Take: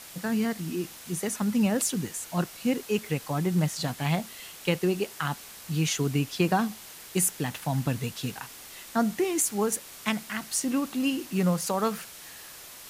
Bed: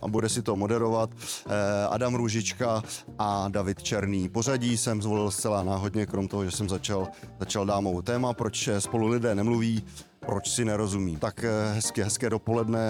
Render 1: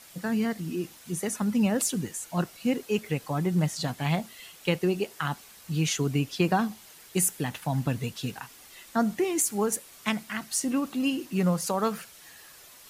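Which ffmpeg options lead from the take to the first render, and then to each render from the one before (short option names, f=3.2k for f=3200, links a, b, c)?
-af "afftdn=nr=7:nf=-46"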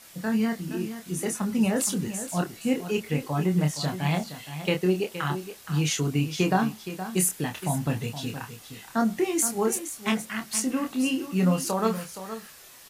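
-filter_complex "[0:a]asplit=2[a][b];[b]adelay=27,volume=-5dB[c];[a][c]amix=inputs=2:normalize=0,aecho=1:1:469:0.266"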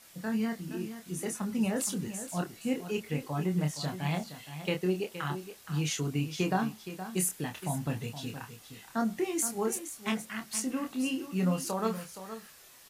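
-af "volume=-6dB"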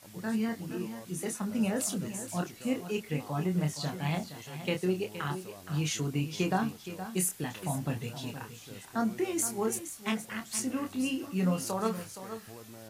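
-filter_complex "[1:a]volume=-23dB[a];[0:a][a]amix=inputs=2:normalize=0"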